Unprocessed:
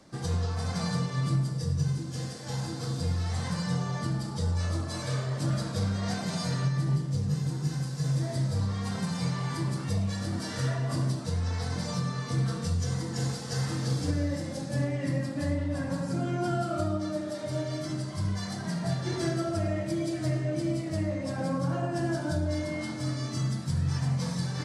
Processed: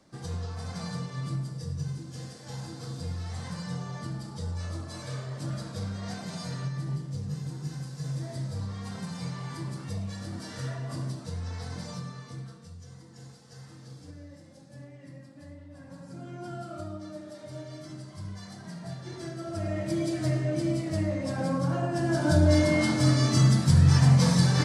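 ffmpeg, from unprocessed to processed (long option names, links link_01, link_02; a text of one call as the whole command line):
ffmpeg -i in.wav -af "volume=21.5dB,afade=type=out:start_time=11.8:duration=0.79:silence=0.251189,afade=type=in:start_time=15.7:duration=0.95:silence=0.375837,afade=type=in:start_time=19.37:duration=0.59:silence=0.298538,afade=type=in:start_time=22.06:duration=0.42:silence=0.398107" out.wav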